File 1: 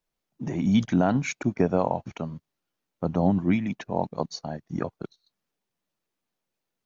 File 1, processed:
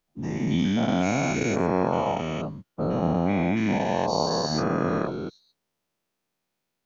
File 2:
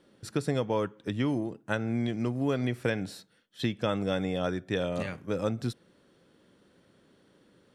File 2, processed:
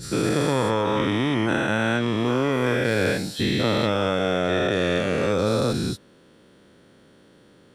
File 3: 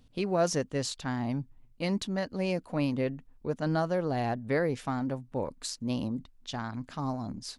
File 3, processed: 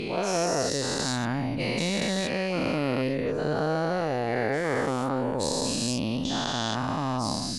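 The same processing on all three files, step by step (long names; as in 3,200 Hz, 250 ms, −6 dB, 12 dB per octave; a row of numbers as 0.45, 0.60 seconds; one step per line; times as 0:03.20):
every bin's largest magnitude spread in time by 480 ms
speech leveller within 3 dB 0.5 s
normalise the peak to −9 dBFS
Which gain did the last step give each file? −5.5, +1.0, −2.5 decibels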